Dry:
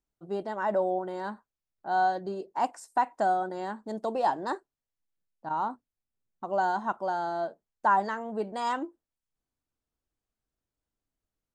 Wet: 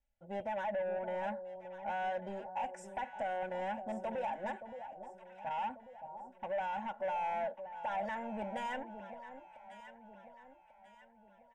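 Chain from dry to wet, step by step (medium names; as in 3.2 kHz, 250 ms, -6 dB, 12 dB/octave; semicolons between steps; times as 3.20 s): low-pass 5 kHz 12 dB/octave; comb 3.5 ms, depth 83%; compression 6:1, threshold -26 dBFS, peak gain reduction 9.5 dB; peak limiter -25 dBFS, peak gain reduction 8.5 dB; saturation -32 dBFS, distortion -13 dB; static phaser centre 1.2 kHz, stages 6; echo whose repeats swap between lows and highs 571 ms, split 940 Hz, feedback 65%, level -9 dB; trim +1.5 dB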